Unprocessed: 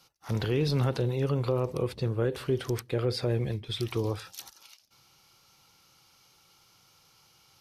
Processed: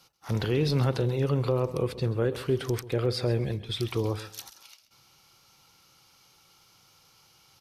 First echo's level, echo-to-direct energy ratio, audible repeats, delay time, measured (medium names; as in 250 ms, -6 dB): -16.0 dB, -16.0 dB, 2, 132 ms